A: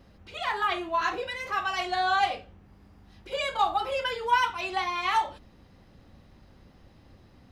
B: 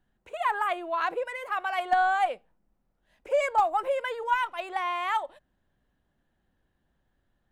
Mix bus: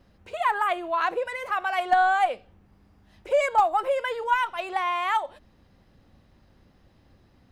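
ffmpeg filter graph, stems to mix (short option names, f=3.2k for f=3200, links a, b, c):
-filter_complex "[0:a]acompressor=threshold=-33dB:ratio=6,alimiter=level_in=10.5dB:limit=-24dB:level=0:latency=1:release=39,volume=-10.5dB,volume=-4dB[a];[1:a]volume=3dB[b];[a][b]amix=inputs=2:normalize=0"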